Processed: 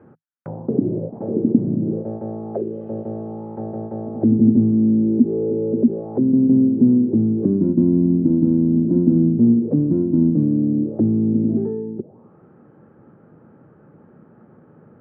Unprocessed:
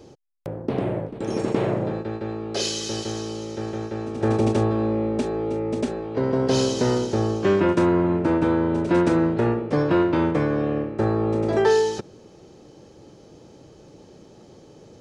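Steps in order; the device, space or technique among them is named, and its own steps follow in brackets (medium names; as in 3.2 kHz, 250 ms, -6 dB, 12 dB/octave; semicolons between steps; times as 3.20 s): envelope filter bass rig (touch-sensitive low-pass 270–1600 Hz down, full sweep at -19.5 dBFS; cabinet simulation 75–2400 Hz, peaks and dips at 110 Hz +5 dB, 160 Hz +9 dB, 230 Hz +10 dB); trim -5.5 dB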